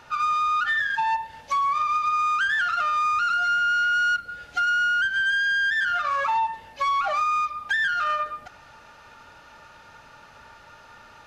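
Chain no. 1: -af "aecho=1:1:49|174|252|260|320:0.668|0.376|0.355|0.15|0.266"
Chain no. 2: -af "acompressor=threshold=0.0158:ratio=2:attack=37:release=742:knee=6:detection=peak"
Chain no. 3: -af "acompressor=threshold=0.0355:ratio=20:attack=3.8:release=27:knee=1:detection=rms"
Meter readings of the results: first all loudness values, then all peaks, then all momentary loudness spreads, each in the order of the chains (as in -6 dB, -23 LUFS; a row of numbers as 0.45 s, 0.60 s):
-20.0 LUFS, -31.0 LUFS, -30.5 LUFS; -10.0 dBFS, -20.0 dBFS, -22.0 dBFS; 6 LU, 19 LU, 19 LU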